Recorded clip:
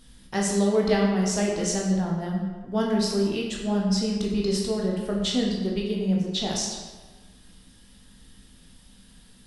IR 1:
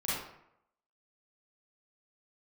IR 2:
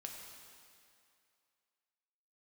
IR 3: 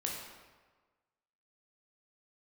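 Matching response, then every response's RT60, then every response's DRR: 3; 0.75, 2.5, 1.4 seconds; −9.5, 0.5, −2.0 decibels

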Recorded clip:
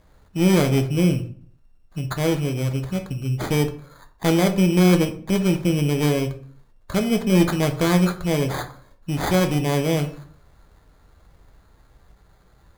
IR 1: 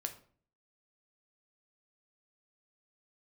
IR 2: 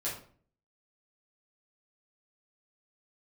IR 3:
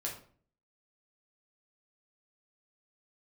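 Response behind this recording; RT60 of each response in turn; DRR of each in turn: 1; 0.50, 0.50, 0.50 seconds; 5.5, −8.5, −3.0 decibels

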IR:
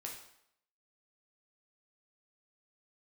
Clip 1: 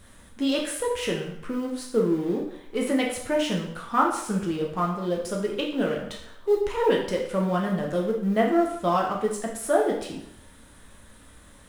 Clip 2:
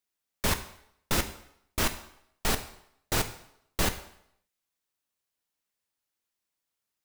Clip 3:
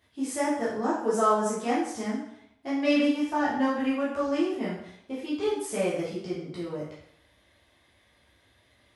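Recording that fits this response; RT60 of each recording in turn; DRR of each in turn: 1; 0.75, 0.75, 0.75 seconds; −1.5, 8.0, −9.5 decibels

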